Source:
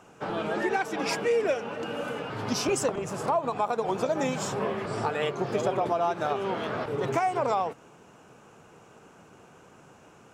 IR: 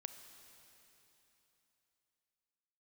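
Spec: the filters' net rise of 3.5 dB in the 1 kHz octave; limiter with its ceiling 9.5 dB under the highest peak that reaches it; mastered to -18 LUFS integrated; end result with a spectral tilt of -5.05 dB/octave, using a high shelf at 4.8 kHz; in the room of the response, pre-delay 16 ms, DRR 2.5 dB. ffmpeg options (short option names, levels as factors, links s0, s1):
-filter_complex "[0:a]equalizer=f=1000:t=o:g=5,highshelf=f=4800:g=-7,alimiter=limit=0.0891:level=0:latency=1,asplit=2[s0][s1];[1:a]atrim=start_sample=2205,adelay=16[s2];[s1][s2]afir=irnorm=-1:irlink=0,volume=1.19[s3];[s0][s3]amix=inputs=2:normalize=0,volume=3.35"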